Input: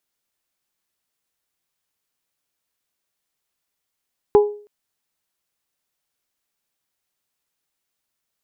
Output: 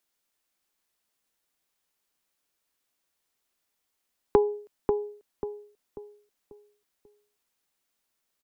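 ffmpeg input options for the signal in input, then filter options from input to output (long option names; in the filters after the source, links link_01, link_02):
-f lavfi -i "aevalsrc='0.501*pow(10,-3*t/0.44)*sin(2*PI*415*t)+0.168*pow(10,-3*t/0.271)*sin(2*PI*830*t)+0.0562*pow(10,-3*t/0.238)*sin(2*PI*996*t)':duration=0.32:sample_rate=44100"
-filter_complex "[0:a]equalizer=frequency=110:width=2.3:gain=-11,acrossover=split=180[link_01][link_02];[link_02]acompressor=threshold=-18dB:ratio=6[link_03];[link_01][link_03]amix=inputs=2:normalize=0,asplit=2[link_04][link_05];[link_05]adelay=540,lowpass=frequency=980:poles=1,volume=-4dB,asplit=2[link_06][link_07];[link_07]adelay=540,lowpass=frequency=980:poles=1,volume=0.4,asplit=2[link_08][link_09];[link_09]adelay=540,lowpass=frequency=980:poles=1,volume=0.4,asplit=2[link_10][link_11];[link_11]adelay=540,lowpass=frequency=980:poles=1,volume=0.4,asplit=2[link_12][link_13];[link_13]adelay=540,lowpass=frequency=980:poles=1,volume=0.4[link_14];[link_06][link_08][link_10][link_12][link_14]amix=inputs=5:normalize=0[link_15];[link_04][link_15]amix=inputs=2:normalize=0"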